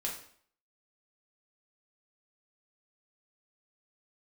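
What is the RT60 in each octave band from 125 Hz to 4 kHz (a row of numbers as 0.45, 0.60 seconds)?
0.55, 0.60, 0.55, 0.55, 0.55, 0.50 seconds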